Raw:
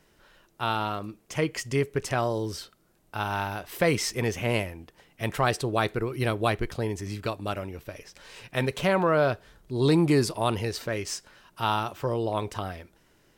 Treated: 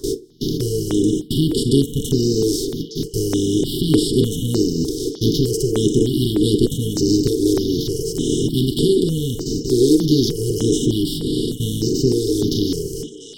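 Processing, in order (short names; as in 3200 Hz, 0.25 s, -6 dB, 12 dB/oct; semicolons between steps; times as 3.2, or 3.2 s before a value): per-bin compression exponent 0.2; gate with hold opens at -10 dBFS; in parallel at -5.5 dB: soft clip -12.5 dBFS, distortion -12 dB; on the sum: reverb removal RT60 1 s; brick-wall FIR band-stop 470–2900 Hz; delay with a stepping band-pass 0.534 s, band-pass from 820 Hz, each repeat 1.4 oct, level -3 dB; on a send at -2 dB: reverb RT60 0.25 s, pre-delay 3 ms; on the sum: step phaser 3.3 Hz 720–6200 Hz; gain +2 dB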